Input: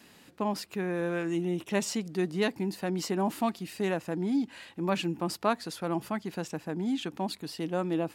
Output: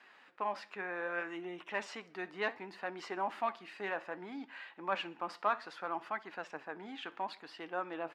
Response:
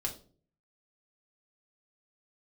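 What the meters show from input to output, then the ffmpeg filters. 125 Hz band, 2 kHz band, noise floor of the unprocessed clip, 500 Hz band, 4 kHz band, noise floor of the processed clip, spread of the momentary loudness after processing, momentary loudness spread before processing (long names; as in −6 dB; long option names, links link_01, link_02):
−23.5 dB, −0.5 dB, −57 dBFS, −9.0 dB, −9.0 dB, −62 dBFS, 9 LU, 6 LU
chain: -filter_complex "[0:a]asplit=2[link_01][link_02];[link_02]highpass=frequency=720:poles=1,volume=11dB,asoftclip=type=tanh:threshold=-13dB[link_03];[link_01][link_03]amix=inputs=2:normalize=0,lowpass=frequency=1800:poles=1,volume=-6dB,bandpass=frequency=1500:width_type=q:width=0.95:csg=0,asplit=2[link_04][link_05];[link_05]aecho=0:1:62|124|186:0.0891|0.041|0.0189[link_06];[link_04][link_06]amix=inputs=2:normalize=0,flanger=delay=2.5:depth=7.5:regen=76:speed=0.65:shape=sinusoidal,volume=2.5dB"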